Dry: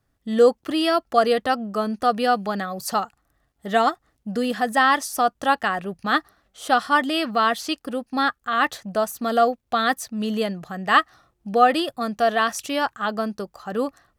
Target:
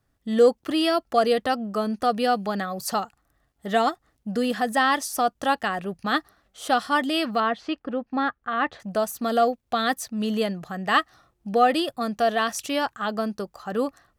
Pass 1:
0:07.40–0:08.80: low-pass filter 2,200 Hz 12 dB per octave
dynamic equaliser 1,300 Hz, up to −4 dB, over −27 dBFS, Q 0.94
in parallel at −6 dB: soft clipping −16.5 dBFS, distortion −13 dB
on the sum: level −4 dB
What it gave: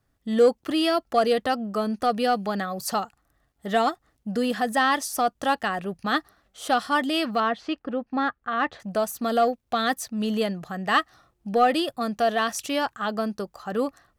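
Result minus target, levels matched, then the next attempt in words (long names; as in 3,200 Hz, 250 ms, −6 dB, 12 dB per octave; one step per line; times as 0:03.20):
soft clipping: distortion +11 dB
0:07.40–0:08.80: low-pass filter 2,200 Hz 12 dB per octave
dynamic equaliser 1,300 Hz, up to −4 dB, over −27 dBFS, Q 0.94
in parallel at −6 dB: soft clipping −8 dBFS, distortion −24 dB
on the sum: level −4 dB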